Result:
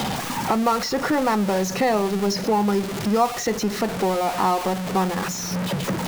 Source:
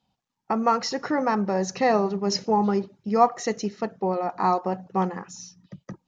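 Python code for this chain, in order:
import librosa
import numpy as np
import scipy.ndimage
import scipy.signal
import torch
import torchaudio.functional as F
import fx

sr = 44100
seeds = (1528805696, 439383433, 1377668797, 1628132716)

y = x + 0.5 * 10.0 ** (-25.5 / 20.0) * np.sign(x)
y = fx.band_squash(y, sr, depth_pct=70)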